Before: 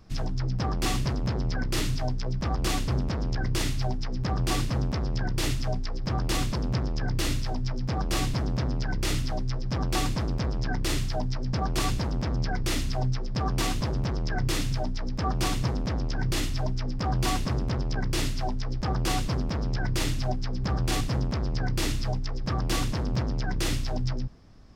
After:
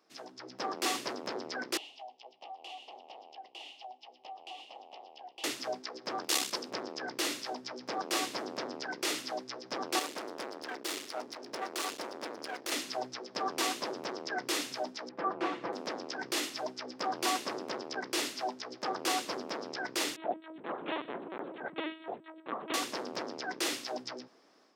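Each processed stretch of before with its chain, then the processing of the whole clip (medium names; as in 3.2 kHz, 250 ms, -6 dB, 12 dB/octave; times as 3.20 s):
1.77–5.44 s: two resonant band-passes 1.5 kHz, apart 1.9 oct + compression 3:1, threshold -42 dBFS
6.24–6.71 s: treble shelf 2.6 kHz +10.5 dB + transformer saturation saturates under 250 Hz
9.99–12.72 s: overload inside the chain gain 28 dB + peaking EQ 160 Hz -5 dB 0.86 oct
15.09–15.73 s: low-pass 1.8 kHz + comb 5.9 ms, depth 46%
20.16–22.74 s: distance through air 290 m + hum notches 60/120/180/240/300/360/420 Hz + LPC vocoder at 8 kHz pitch kept
whole clip: high-pass 330 Hz 24 dB/octave; level rider gain up to 8 dB; trim -9 dB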